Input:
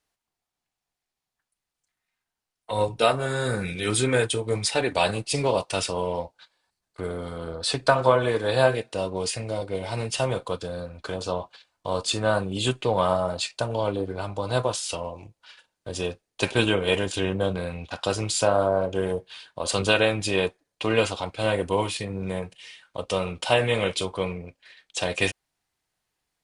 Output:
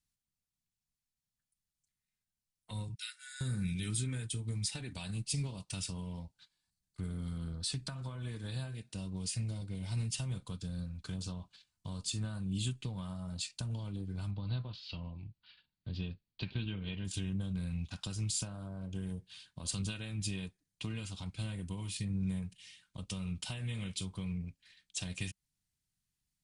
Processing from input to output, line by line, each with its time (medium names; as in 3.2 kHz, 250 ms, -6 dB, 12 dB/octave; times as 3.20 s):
2.95–3.41 s: rippled Chebyshev high-pass 1.4 kHz, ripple 6 dB
14.31–17.05 s: Chebyshev low-pass 4.5 kHz, order 5
whole clip: treble shelf 7.2 kHz -4 dB; compression 6:1, threshold -27 dBFS; FFT filter 190 Hz 0 dB, 510 Hz -25 dB, 8.1 kHz -2 dB